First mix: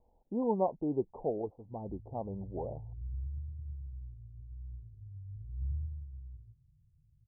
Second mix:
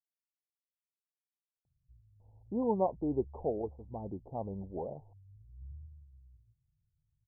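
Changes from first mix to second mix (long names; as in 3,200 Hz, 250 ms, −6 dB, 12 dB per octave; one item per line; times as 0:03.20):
speech: entry +2.20 s
background −12.0 dB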